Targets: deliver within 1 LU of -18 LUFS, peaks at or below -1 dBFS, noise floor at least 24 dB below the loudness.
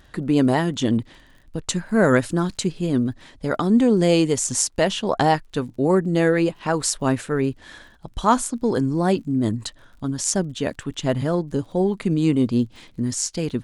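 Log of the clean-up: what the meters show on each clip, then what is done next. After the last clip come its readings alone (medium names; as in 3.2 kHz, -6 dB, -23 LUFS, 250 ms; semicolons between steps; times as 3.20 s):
tick rate 39 per s; loudness -21.5 LUFS; peak level -3.0 dBFS; loudness target -18.0 LUFS
-> de-click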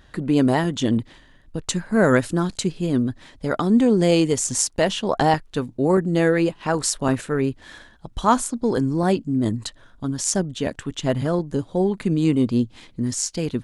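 tick rate 0 per s; loudness -21.5 LUFS; peak level -3.0 dBFS; loudness target -18.0 LUFS
-> trim +3.5 dB; peak limiter -1 dBFS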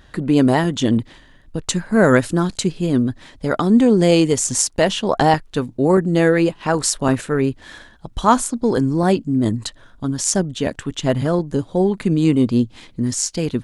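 loudness -18.0 LUFS; peak level -1.0 dBFS; noise floor -48 dBFS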